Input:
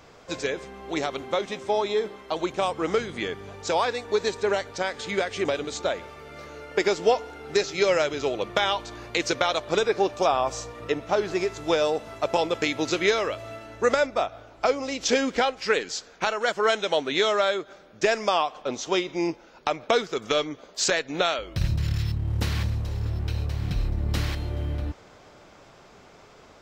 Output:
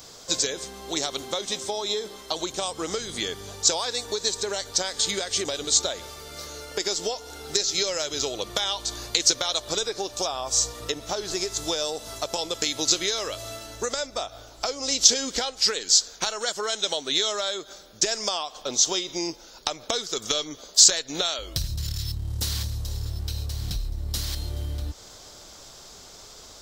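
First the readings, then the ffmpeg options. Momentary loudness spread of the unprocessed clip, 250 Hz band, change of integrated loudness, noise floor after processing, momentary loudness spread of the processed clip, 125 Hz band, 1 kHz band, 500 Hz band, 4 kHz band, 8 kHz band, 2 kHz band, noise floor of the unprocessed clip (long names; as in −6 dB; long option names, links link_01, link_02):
9 LU, −5.5 dB, +1.0 dB, −47 dBFS, 14 LU, −4.5 dB, −7.0 dB, −7.0 dB, +7.0 dB, +13.5 dB, −6.5 dB, −52 dBFS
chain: -af "asubboost=boost=2.5:cutoff=79,acompressor=threshold=-27dB:ratio=6,aexciter=amount=7.2:drive=4:freq=3500"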